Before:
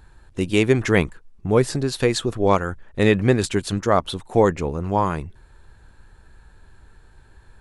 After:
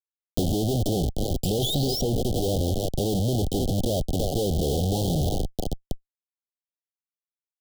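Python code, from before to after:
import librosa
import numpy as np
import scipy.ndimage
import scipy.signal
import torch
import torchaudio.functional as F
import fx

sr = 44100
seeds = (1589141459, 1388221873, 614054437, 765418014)

y = fx.rattle_buzz(x, sr, strikes_db=-35.0, level_db=-21.0)
y = fx.echo_thinned(y, sr, ms=314, feedback_pct=69, hz=440.0, wet_db=-14.5)
y = fx.env_lowpass_down(y, sr, base_hz=670.0, full_db=-14.0)
y = fx.high_shelf(y, sr, hz=4100.0, db=-11.5)
y = fx.spec_paint(y, sr, seeds[0], shape='rise', start_s=1.43, length_s=0.59, low_hz=2400.0, high_hz=5800.0, level_db=-30.0)
y = fx.schmitt(y, sr, flips_db=-32.0)
y = scipy.signal.sosfilt(scipy.signal.cheby1(5, 1.0, [780.0, 3100.0], 'bandstop', fs=sr, output='sos'), y)
y = fx.band_squash(y, sr, depth_pct=70)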